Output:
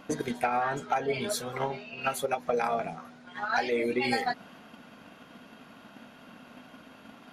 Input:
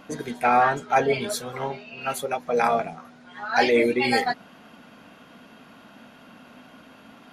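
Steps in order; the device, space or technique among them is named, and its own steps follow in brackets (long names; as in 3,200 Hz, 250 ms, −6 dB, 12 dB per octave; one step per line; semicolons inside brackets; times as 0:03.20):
drum-bus smash (transient designer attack +7 dB, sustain +2 dB; downward compressor 16 to 1, threshold −20 dBFS, peak gain reduction 12 dB; soft clipping −11 dBFS, distortion −26 dB)
level −3 dB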